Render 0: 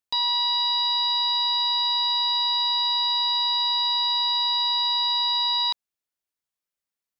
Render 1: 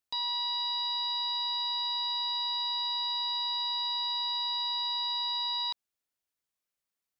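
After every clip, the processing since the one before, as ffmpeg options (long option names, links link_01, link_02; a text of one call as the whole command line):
ffmpeg -i in.wav -af "alimiter=level_in=1.5dB:limit=-24dB:level=0:latency=1,volume=-1.5dB" out.wav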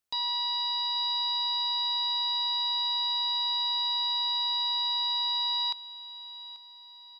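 ffmpeg -i in.wav -af "aecho=1:1:836|1672|2508|3344:0.141|0.0664|0.0312|0.0147,volume=2dB" out.wav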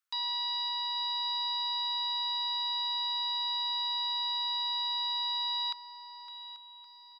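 ffmpeg -i in.wav -af "highpass=frequency=1300:width_type=q:width=2.7,aecho=1:1:559|1118|1677|2236:0.2|0.0878|0.0386|0.017,volume=-4dB" out.wav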